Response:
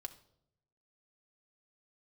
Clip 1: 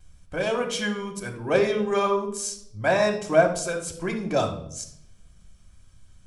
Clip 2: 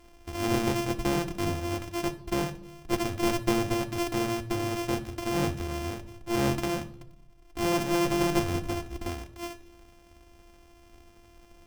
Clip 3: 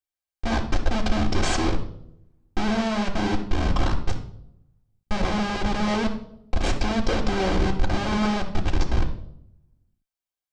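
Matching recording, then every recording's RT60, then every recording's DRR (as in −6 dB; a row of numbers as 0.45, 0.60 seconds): 2; 0.70, 0.75, 0.70 seconds; −15.0, 4.5, −5.5 decibels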